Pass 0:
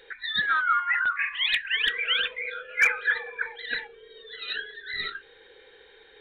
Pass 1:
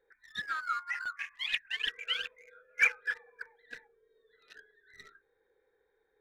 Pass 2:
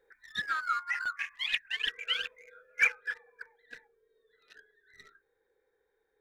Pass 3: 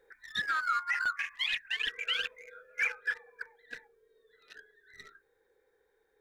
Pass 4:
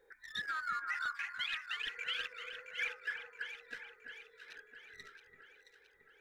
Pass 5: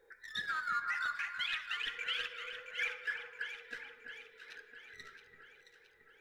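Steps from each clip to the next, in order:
local Wiener filter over 15 samples; dynamic bell 2.7 kHz, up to +7 dB, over -44 dBFS, Q 4.4; upward expansion 1.5:1, over -41 dBFS; trim -5.5 dB
gain riding within 3 dB 0.5 s; trim +1 dB
peak limiter -26 dBFS, peak gain reduction 11 dB; trim +4 dB
compression 1.5:1, threshold -43 dBFS, peak gain reduction 6 dB; echo whose repeats swap between lows and highs 335 ms, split 2 kHz, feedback 72%, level -6 dB; trim -2 dB
reverberation RT60 1.7 s, pre-delay 8 ms, DRR 8 dB; trim +1 dB

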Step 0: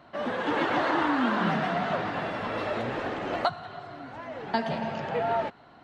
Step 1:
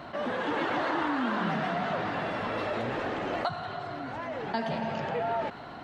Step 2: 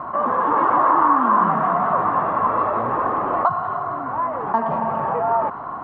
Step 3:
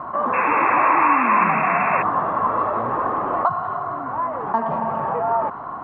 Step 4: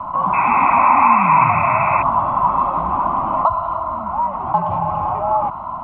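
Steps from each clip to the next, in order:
level flattener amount 50%; trim -5.5 dB
resonant low-pass 1.1 kHz, resonance Q 8.1; trim +4.5 dB
painted sound noise, 0.33–2.03 s, 760–2700 Hz -24 dBFS; trim -1 dB
frequency shift -58 Hz; static phaser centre 1.7 kHz, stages 6; trim +5 dB

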